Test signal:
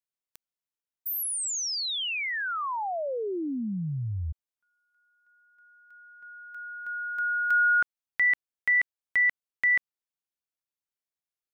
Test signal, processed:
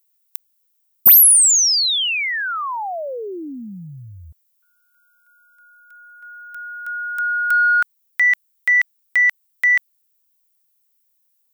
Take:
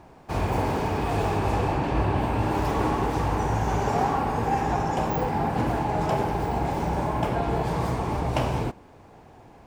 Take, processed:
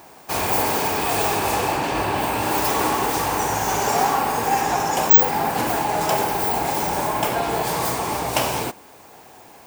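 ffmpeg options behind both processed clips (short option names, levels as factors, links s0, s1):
-af "aemphasis=mode=production:type=riaa,acontrast=80,volume=0.891"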